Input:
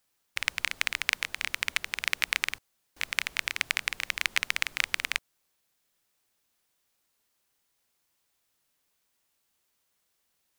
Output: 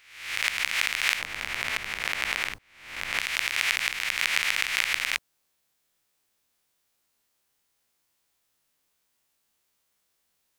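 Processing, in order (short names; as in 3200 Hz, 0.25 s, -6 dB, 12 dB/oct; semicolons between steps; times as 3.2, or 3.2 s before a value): spectral swells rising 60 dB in 0.69 s; 1.19–3.2 tilt shelf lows +6 dB, about 1200 Hz; gain -1 dB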